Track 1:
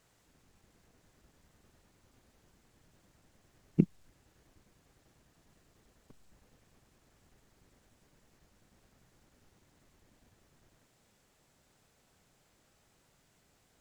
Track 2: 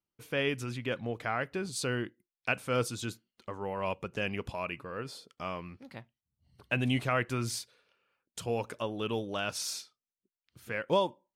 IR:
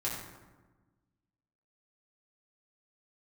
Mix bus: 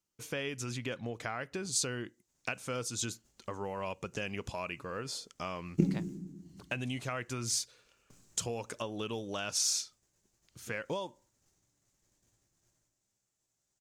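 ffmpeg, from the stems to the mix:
-filter_complex "[0:a]agate=range=0.0224:threshold=0.00141:ratio=3:detection=peak,highshelf=f=5300:g=7,adelay=2000,volume=0.501,asplit=2[s0][s1];[s1]volume=0.631[s2];[1:a]acompressor=threshold=0.0158:ratio=5,volume=1.19[s3];[2:a]atrim=start_sample=2205[s4];[s2][s4]afir=irnorm=-1:irlink=0[s5];[s0][s3][s5]amix=inputs=3:normalize=0,equalizer=f=6600:w=1.4:g=11.5"

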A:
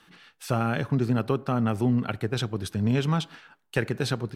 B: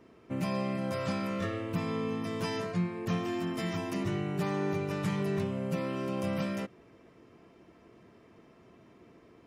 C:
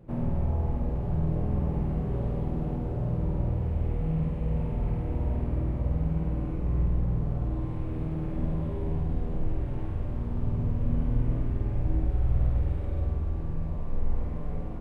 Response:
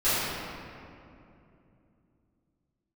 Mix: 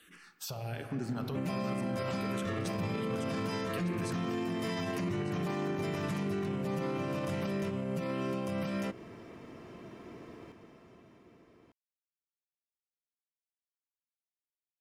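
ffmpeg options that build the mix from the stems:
-filter_complex "[0:a]acompressor=threshold=0.0398:ratio=6,asplit=2[s0][s1];[s1]afreqshift=-1.3[s2];[s0][s2]amix=inputs=2:normalize=1,volume=0.708,asplit=3[s3][s4][s5];[s4]volume=0.0631[s6];[s5]volume=0.282[s7];[1:a]adelay=1050,volume=1,asplit=2[s8][s9];[s9]volume=0.668[s10];[s3]crystalizer=i=2:c=0,alimiter=level_in=2.24:limit=0.0631:level=0:latency=1:release=367,volume=0.447,volume=1[s11];[3:a]atrim=start_sample=2205[s12];[s6][s12]afir=irnorm=-1:irlink=0[s13];[s7][s10]amix=inputs=2:normalize=0,aecho=0:1:1200:1[s14];[s8][s11][s13][s14]amix=inputs=4:normalize=0,dynaudnorm=f=190:g=11:m=2.24,alimiter=level_in=1.33:limit=0.0631:level=0:latency=1:release=91,volume=0.75"

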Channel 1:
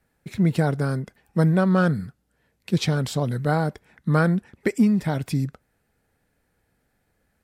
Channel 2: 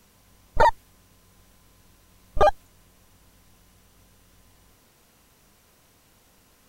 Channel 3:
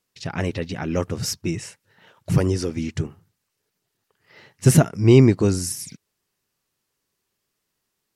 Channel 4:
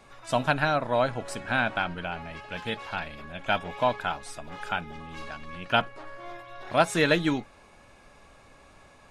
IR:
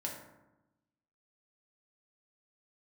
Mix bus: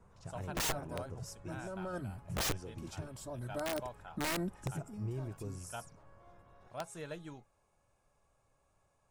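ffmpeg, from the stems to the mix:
-filter_complex "[0:a]agate=range=0.0224:threshold=0.00398:ratio=3:detection=peak,aecho=1:1:3.2:0.99,alimiter=limit=0.168:level=0:latency=1:release=57,adelay=100,volume=0.447[s0];[1:a]alimiter=limit=0.188:level=0:latency=1:release=53,lowpass=f=1800:w=0.5412,lowpass=f=1800:w=1.3066,volume=0.944[s1];[2:a]highshelf=f=4600:g=-8,acompressor=threshold=0.0891:ratio=4,volume=0.141,asplit=2[s2][s3];[3:a]volume=0.119[s4];[s3]apad=whole_len=332603[s5];[s0][s5]sidechaincompress=threshold=0.00282:ratio=16:attack=16:release=892[s6];[s6][s1][s2][s4]amix=inputs=4:normalize=0,equalizer=f=125:t=o:w=1:g=4,equalizer=f=250:t=o:w=1:g=-8,equalizer=f=2000:t=o:w=1:g=-8,equalizer=f=4000:t=o:w=1:g=-8,equalizer=f=8000:t=o:w=1:g=5,aeval=exprs='(mod(28.2*val(0)+1,2)-1)/28.2':c=same"

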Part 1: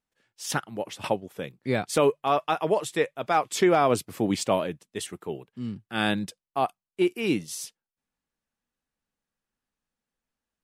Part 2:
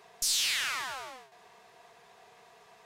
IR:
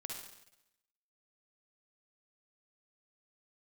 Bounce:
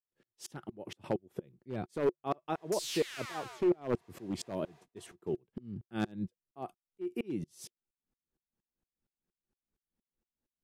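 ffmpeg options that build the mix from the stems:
-filter_complex "[0:a]tiltshelf=f=640:g=7,aeval=exprs='0.251*(abs(mod(val(0)/0.251+3,4)-2)-1)':c=same,aeval=exprs='val(0)*pow(10,-37*if(lt(mod(-4.3*n/s,1),2*abs(-4.3)/1000),1-mod(-4.3*n/s,1)/(2*abs(-4.3)/1000),(mod(-4.3*n/s,1)-2*abs(-4.3)/1000)/(1-2*abs(-4.3)/1000))/20)':c=same,volume=1.26,asplit=2[s0][s1];[1:a]adelay=2500,volume=0.447[s2];[s1]apad=whole_len=236267[s3];[s2][s3]sidechaingate=range=0.0224:threshold=0.002:ratio=16:detection=peak[s4];[s0][s4]amix=inputs=2:normalize=0,equalizer=f=360:w=5.5:g=7.5,acompressor=threshold=0.02:ratio=2"

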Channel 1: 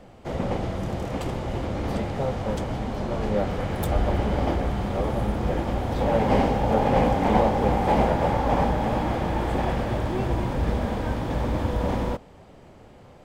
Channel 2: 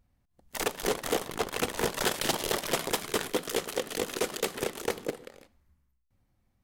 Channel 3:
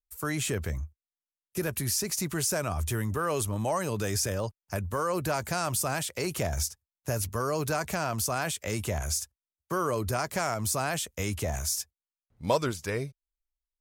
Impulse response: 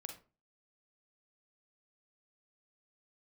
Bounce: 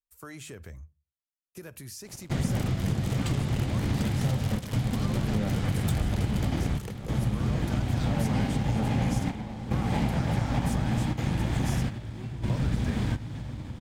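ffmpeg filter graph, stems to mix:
-filter_complex "[0:a]equalizer=f=125:t=o:w=1:g=12,equalizer=f=250:t=o:w=1:g=4,equalizer=f=500:t=o:w=1:g=-9,equalizer=f=1000:t=o:w=1:g=-4,equalizer=f=2000:t=o:w=1:g=3,equalizer=f=4000:t=o:w=1:g=5,equalizer=f=8000:t=o:w=1:g=7,acompressor=threshold=0.0562:ratio=6,aeval=exprs='sgn(val(0))*max(abs(val(0))-0.00668,0)':c=same,adelay=2050,volume=1.06,asplit=2[s0][s1];[s1]volume=0.447[s2];[1:a]adelay=2000,volume=0.708[s3];[2:a]highshelf=f=7600:g=-4.5,volume=0.316,asplit=3[s4][s5][s6];[s5]volume=0.2[s7];[s6]apad=whole_len=674411[s8];[s0][s8]sidechaingate=range=0.126:threshold=0.00224:ratio=16:detection=peak[s9];[s3][s4]amix=inputs=2:normalize=0,bandreject=f=50:t=h:w=6,bandreject=f=100:t=h:w=6,bandreject=f=150:t=h:w=6,acompressor=threshold=0.01:ratio=6,volume=1[s10];[3:a]atrim=start_sample=2205[s11];[s2][s7]amix=inputs=2:normalize=0[s12];[s12][s11]afir=irnorm=-1:irlink=0[s13];[s9][s10][s13]amix=inputs=3:normalize=0"

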